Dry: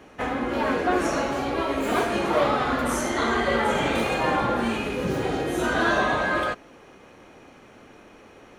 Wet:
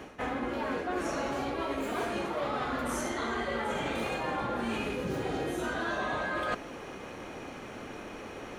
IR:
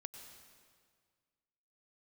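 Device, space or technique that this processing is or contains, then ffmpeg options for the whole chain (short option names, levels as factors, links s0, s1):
compression on the reversed sound: -af "areverse,acompressor=threshold=0.0141:ratio=8,areverse,volume=2.11"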